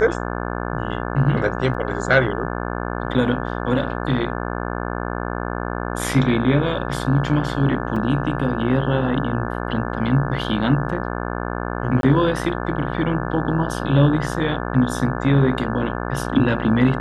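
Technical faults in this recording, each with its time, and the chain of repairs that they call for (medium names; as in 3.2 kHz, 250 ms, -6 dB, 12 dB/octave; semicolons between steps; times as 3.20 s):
buzz 60 Hz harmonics 29 -26 dBFS
1.74 s: dropout 4.8 ms
7.96 s: dropout 3.8 ms
12.01–12.03 s: dropout 22 ms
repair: de-hum 60 Hz, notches 29; interpolate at 1.74 s, 4.8 ms; interpolate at 7.96 s, 3.8 ms; interpolate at 12.01 s, 22 ms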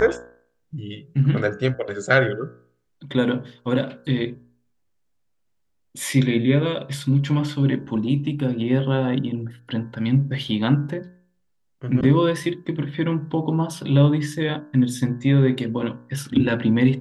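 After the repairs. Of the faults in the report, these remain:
nothing left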